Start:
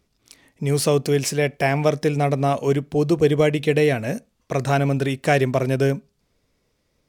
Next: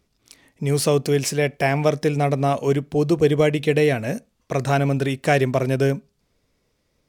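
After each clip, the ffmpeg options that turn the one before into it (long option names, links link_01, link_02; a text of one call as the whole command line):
ffmpeg -i in.wav -af anull out.wav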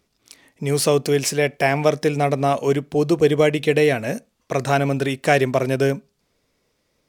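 ffmpeg -i in.wav -af "lowshelf=frequency=160:gain=-8.5,volume=2.5dB" out.wav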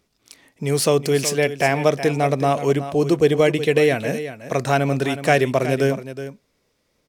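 ffmpeg -i in.wav -af "aecho=1:1:370:0.251" out.wav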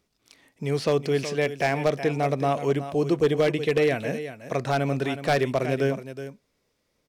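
ffmpeg -i in.wav -filter_complex "[0:a]acrossover=split=4900[link_01][link_02];[link_02]acompressor=threshold=-46dB:ratio=4:attack=1:release=60[link_03];[link_01][link_03]amix=inputs=2:normalize=0,aeval=exprs='0.422*(abs(mod(val(0)/0.422+3,4)-2)-1)':channel_layout=same,volume=-5dB" out.wav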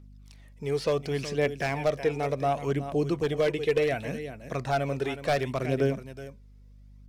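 ffmpeg -i in.wav -af "aeval=exprs='val(0)+0.00398*(sin(2*PI*50*n/s)+sin(2*PI*2*50*n/s)/2+sin(2*PI*3*50*n/s)/3+sin(2*PI*4*50*n/s)/4+sin(2*PI*5*50*n/s)/5)':channel_layout=same,aphaser=in_gain=1:out_gain=1:delay=2.5:decay=0.39:speed=0.69:type=triangular,volume=-4.5dB" out.wav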